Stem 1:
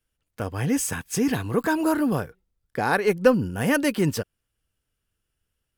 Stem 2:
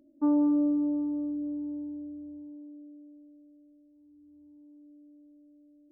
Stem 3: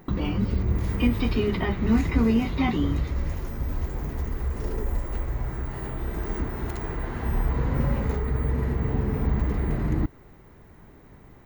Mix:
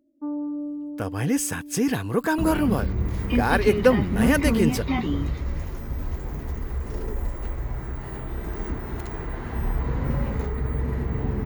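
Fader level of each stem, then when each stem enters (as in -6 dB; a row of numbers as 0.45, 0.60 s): 0.0, -5.5, -1.0 dB; 0.60, 0.00, 2.30 s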